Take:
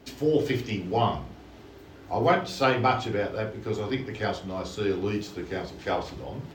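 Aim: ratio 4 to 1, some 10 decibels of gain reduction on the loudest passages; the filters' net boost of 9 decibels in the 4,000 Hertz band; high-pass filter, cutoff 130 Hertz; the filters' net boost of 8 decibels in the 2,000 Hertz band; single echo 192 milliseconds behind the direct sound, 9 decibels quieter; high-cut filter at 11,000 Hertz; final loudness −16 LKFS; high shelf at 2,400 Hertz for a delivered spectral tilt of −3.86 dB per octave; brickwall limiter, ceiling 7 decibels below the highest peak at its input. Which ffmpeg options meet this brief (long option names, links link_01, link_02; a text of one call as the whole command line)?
ffmpeg -i in.wav -af "highpass=130,lowpass=11000,equalizer=frequency=2000:width_type=o:gain=6.5,highshelf=frequency=2400:gain=6,equalizer=frequency=4000:width_type=o:gain=4,acompressor=threshold=-26dB:ratio=4,alimiter=limit=-21dB:level=0:latency=1,aecho=1:1:192:0.355,volume=15.5dB" out.wav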